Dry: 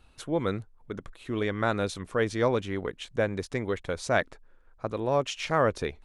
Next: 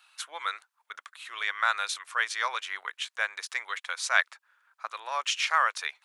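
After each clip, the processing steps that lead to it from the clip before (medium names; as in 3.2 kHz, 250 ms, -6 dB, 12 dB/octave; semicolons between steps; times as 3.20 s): high-pass 1.1 kHz 24 dB/octave; trim +6.5 dB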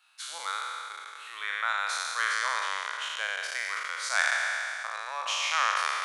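spectral sustain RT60 2.86 s; trim -6.5 dB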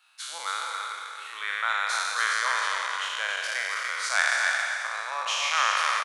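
delay 272 ms -5 dB; trim +2 dB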